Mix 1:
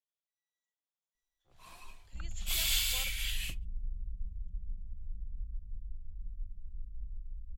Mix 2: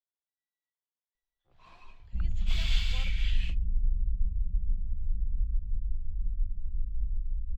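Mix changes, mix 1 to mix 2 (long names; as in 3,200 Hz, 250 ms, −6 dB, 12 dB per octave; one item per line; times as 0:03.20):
second sound +11.0 dB
master: add high-frequency loss of the air 190 metres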